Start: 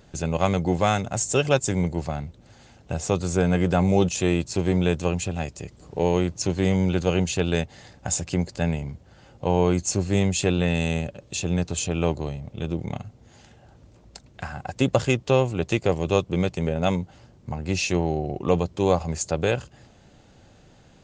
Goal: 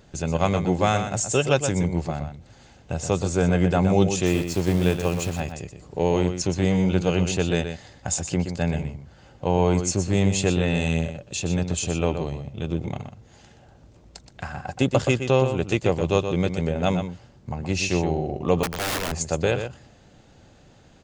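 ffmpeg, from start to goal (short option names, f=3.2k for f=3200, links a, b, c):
-filter_complex "[0:a]asettb=1/sr,asplit=3[a][b][c];[a]atrim=end=4.264[d];[b]atrim=start=4.26:end=5.4,asetpts=PTS-STARTPTS,afade=t=in:d=0.004:c=qsin,afade=t=out:st=1.136:d=0.004:c=qsin,acrusher=bits=7:dc=4:mix=0:aa=0.000001[e];[c]atrim=start=5.396[f];[d][e]acrossfade=d=0.004:c1=hsin:c2=qsin[g];[g][f]acrossfade=d=0.004:c1=qsin:c2=hsin,asplit=2[h][i];[i]adelay=122.4,volume=-8dB,highshelf=f=4k:g=-2.76[j];[h][j]amix=inputs=2:normalize=0,asettb=1/sr,asplit=3[k][l][m];[k]atrim=end=18.634[n];[l]atrim=start=18.63:end=19.12,asetpts=PTS-STARTPTS,afade=t=in:d=0.004:c=qsin,afade=t=out:st=0.486:d=0.004:c=qsin,aeval=exprs='(mod(11.2*val(0)+1,2)-1)/11.2':c=same[o];[m]atrim=start=19.116[p];[n][o]acrossfade=d=0.004:c1=hsin:c2=qsin[q];[q][p]acrossfade=d=0.004:c1=qsin:c2=hsin"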